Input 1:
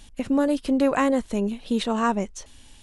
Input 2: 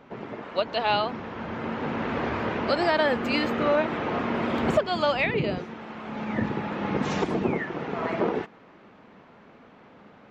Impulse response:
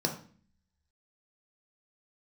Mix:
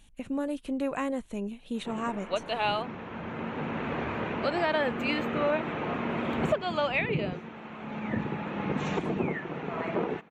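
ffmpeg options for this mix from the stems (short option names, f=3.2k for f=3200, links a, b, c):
-filter_complex "[0:a]volume=-10dB[a];[1:a]adelay=1750,volume=-4.5dB[b];[a][b]amix=inputs=2:normalize=0,equalizer=f=160:t=o:w=0.33:g=5,equalizer=f=2.5k:t=o:w=0.33:g=4,equalizer=f=5k:t=o:w=0.33:g=-11"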